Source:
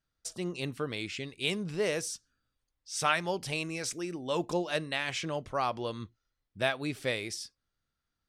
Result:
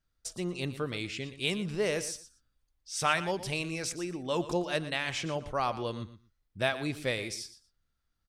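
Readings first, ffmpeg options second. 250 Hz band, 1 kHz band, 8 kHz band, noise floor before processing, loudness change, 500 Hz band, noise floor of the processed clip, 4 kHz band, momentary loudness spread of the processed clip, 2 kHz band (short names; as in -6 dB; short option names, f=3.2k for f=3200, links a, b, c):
+1.0 dB, 0.0 dB, 0.0 dB, -85 dBFS, +0.5 dB, +0.5 dB, -79 dBFS, 0.0 dB, 8 LU, 0.0 dB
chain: -af "lowshelf=f=64:g=11,aecho=1:1:118|236:0.2|0.0359"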